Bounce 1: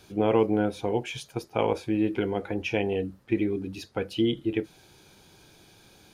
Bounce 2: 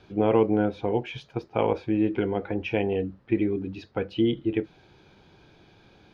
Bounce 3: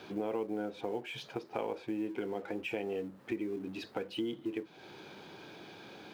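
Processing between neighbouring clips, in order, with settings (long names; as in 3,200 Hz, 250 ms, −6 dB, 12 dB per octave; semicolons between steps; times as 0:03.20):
high-frequency loss of the air 250 metres; level +2 dB
mu-law and A-law mismatch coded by mu; high-pass filter 220 Hz 12 dB per octave; downward compressor 3 to 1, threshold −37 dBFS, peak gain reduction 15.5 dB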